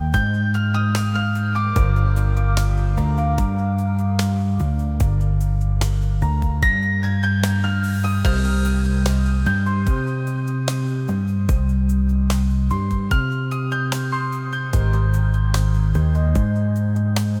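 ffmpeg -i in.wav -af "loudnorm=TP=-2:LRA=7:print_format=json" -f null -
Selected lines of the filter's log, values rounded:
"input_i" : "-20.1",
"input_tp" : "-4.0",
"input_lra" : "1.2",
"input_thresh" : "-30.1",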